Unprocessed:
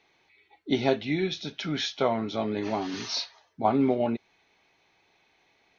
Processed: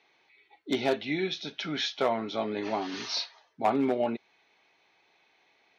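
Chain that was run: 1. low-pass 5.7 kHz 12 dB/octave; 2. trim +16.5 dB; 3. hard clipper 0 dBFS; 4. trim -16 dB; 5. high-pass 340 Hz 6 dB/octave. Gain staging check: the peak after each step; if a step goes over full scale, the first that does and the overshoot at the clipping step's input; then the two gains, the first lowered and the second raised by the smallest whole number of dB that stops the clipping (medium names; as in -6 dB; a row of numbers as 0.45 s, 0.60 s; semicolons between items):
-10.0 dBFS, +6.5 dBFS, 0.0 dBFS, -16.0 dBFS, -13.0 dBFS; step 2, 6.5 dB; step 2 +9.5 dB, step 4 -9 dB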